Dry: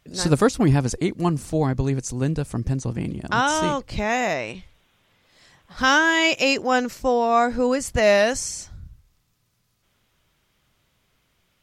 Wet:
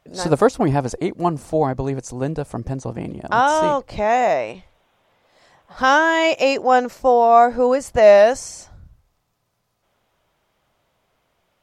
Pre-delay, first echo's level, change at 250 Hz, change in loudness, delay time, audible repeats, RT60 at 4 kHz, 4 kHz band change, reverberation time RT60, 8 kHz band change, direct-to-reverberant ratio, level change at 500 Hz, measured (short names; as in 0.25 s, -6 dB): none, none, -0.5 dB, +4.0 dB, none, none, none, -3.0 dB, none, -4.0 dB, none, +6.5 dB